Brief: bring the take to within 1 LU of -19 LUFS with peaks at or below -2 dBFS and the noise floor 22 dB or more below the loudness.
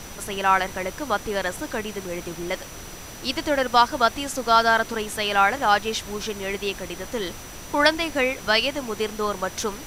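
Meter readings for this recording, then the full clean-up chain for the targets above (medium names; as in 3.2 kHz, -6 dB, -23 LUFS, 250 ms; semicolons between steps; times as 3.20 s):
steady tone 5.9 kHz; tone level -45 dBFS; noise floor -39 dBFS; noise floor target -46 dBFS; loudness -23.5 LUFS; peak level -3.0 dBFS; loudness target -19.0 LUFS
-> band-stop 5.9 kHz, Q 30; noise print and reduce 7 dB; trim +4.5 dB; peak limiter -2 dBFS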